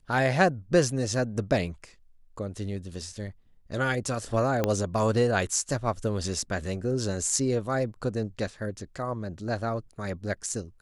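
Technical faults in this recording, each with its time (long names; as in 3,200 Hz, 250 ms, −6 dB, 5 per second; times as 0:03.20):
0:04.64: click −11 dBFS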